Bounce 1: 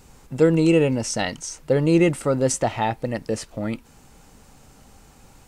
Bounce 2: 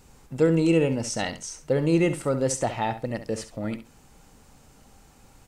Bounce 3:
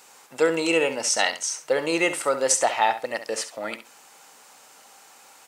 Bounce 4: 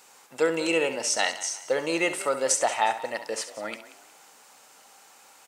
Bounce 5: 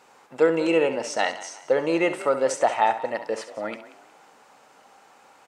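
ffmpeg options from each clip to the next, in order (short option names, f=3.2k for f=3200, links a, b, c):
-af "aecho=1:1:67|134:0.266|0.0479,volume=-4dB"
-af "highpass=730,volume=9dB"
-filter_complex "[0:a]asplit=4[a][b][c][d];[b]adelay=181,afreqshift=41,volume=-16.5dB[e];[c]adelay=362,afreqshift=82,volume=-25.1dB[f];[d]adelay=543,afreqshift=123,volume=-33.8dB[g];[a][e][f][g]amix=inputs=4:normalize=0,volume=-3dB"
-af "lowpass=f=1.2k:p=1,volume=5.5dB"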